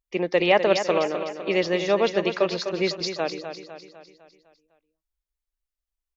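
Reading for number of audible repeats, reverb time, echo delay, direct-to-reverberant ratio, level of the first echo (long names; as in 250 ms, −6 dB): 5, no reverb audible, 252 ms, no reverb audible, −9.0 dB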